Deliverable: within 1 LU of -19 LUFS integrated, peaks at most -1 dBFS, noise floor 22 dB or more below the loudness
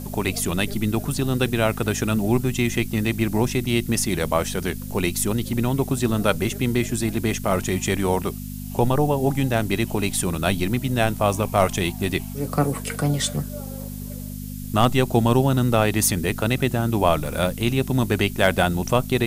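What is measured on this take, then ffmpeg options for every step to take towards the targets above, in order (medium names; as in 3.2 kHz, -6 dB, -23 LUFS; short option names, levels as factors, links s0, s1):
hum 50 Hz; highest harmonic 250 Hz; hum level -30 dBFS; noise floor -33 dBFS; noise floor target -45 dBFS; loudness -22.5 LUFS; peak level -3.5 dBFS; loudness target -19.0 LUFS
-> -af "bandreject=f=50:t=h:w=4,bandreject=f=100:t=h:w=4,bandreject=f=150:t=h:w=4,bandreject=f=200:t=h:w=4,bandreject=f=250:t=h:w=4"
-af "afftdn=nr=12:nf=-33"
-af "volume=1.5,alimiter=limit=0.891:level=0:latency=1"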